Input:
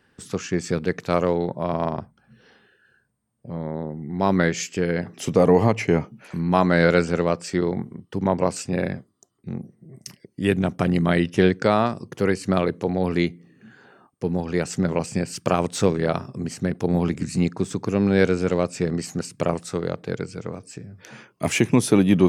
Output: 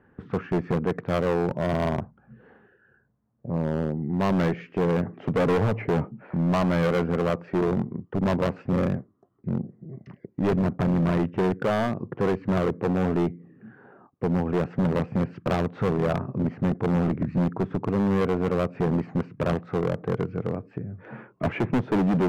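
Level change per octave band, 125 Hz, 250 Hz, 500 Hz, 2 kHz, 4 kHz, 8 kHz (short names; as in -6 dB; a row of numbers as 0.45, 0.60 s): -1.0 dB, -2.5 dB, -3.5 dB, -6.5 dB, -8.0 dB, under -15 dB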